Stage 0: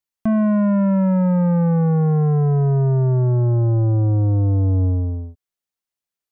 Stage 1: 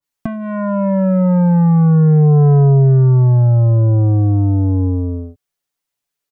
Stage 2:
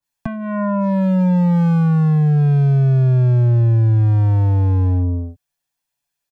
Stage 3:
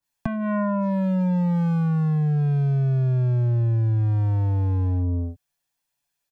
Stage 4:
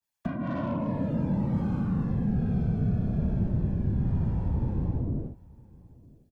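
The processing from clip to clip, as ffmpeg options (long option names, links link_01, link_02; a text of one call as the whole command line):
ffmpeg -i in.wav -filter_complex "[0:a]asplit=2[link_01][link_02];[link_02]alimiter=limit=-23dB:level=0:latency=1,volume=-1dB[link_03];[link_01][link_03]amix=inputs=2:normalize=0,aecho=1:1:7:0.71,adynamicequalizer=threshold=0.0178:dfrequency=1700:dqfactor=0.7:tfrequency=1700:tqfactor=0.7:attack=5:release=100:ratio=0.375:range=2.5:mode=cutabove:tftype=highshelf" out.wav
ffmpeg -i in.wav -filter_complex "[0:a]acrossover=split=190|820[link_01][link_02][link_03];[link_02]alimiter=limit=-21dB:level=0:latency=1:release=463[link_04];[link_01][link_04][link_03]amix=inputs=3:normalize=0,asoftclip=type=hard:threshold=-14dB,aecho=1:1:1.2:0.43" out.wav
ffmpeg -i in.wav -af "acompressor=threshold=-20dB:ratio=6" out.wav
ffmpeg -i in.wav -filter_complex "[0:a]afftfilt=real='hypot(re,im)*cos(2*PI*random(0))':imag='hypot(re,im)*sin(2*PI*random(1))':win_size=512:overlap=0.75,aecho=1:1:959:0.0668,acrossover=split=330|490[link_01][link_02][link_03];[link_03]asoftclip=type=tanh:threshold=-34.5dB[link_04];[link_01][link_02][link_04]amix=inputs=3:normalize=0" out.wav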